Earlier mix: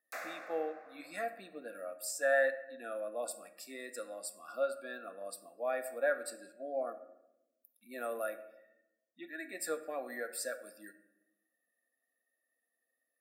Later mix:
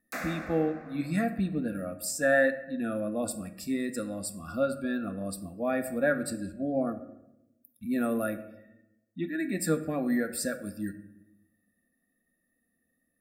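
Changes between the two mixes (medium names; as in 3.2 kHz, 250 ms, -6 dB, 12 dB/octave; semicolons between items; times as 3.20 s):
background: send +6.5 dB; master: remove ladder high-pass 430 Hz, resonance 25%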